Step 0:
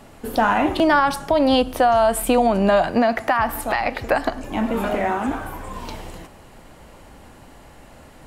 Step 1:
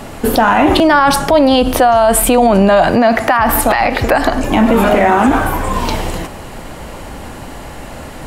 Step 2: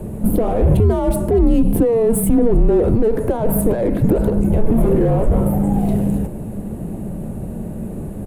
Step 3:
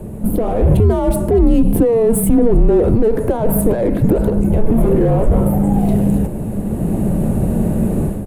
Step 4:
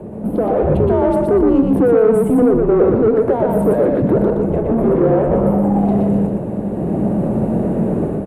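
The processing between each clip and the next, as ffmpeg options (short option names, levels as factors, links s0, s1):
-af "alimiter=level_in=7.08:limit=0.891:release=50:level=0:latency=1,volume=0.891"
-af "asoftclip=type=tanh:threshold=0.282,firequalizer=gain_entry='entry(490,0);entry(1500,-21);entry(5600,-29);entry(9700,-9)':delay=0.05:min_phase=1,afreqshift=-230,volume=1.5"
-af "dynaudnorm=f=350:g=3:m=4.47,volume=0.891"
-filter_complex "[0:a]bandpass=f=570:t=q:w=0.53:csg=0,asoftclip=type=tanh:threshold=0.299,asplit=2[s0][s1];[s1]aecho=0:1:120|240|360|480:0.668|0.167|0.0418|0.0104[s2];[s0][s2]amix=inputs=2:normalize=0,volume=1.41"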